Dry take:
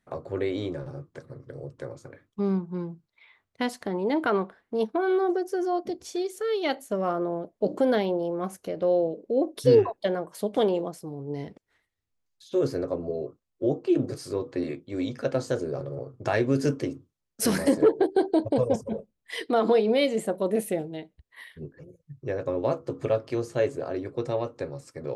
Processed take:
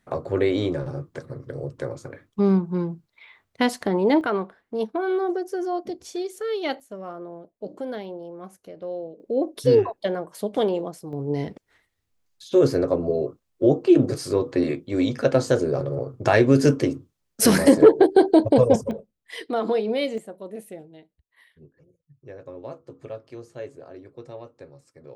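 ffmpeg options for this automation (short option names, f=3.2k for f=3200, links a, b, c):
-af "asetnsamples=n=441:p=0,asendcmd='4.21 volume volume 0dB;6.8 volume volume -9dB;9.2 volume volume 1dB;11.13 volume volume 7.5dB;18.91 volume volume -2dB;20.18 volume volume -11dB',volume=7dB"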